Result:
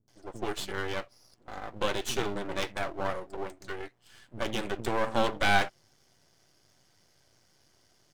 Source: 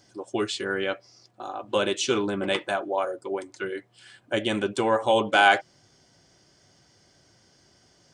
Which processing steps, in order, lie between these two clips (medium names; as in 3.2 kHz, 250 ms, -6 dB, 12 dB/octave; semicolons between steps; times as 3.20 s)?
bands offset in time lows, highs 80 ms, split 240 Hz; half-wave rectifier; trim -1.5 dB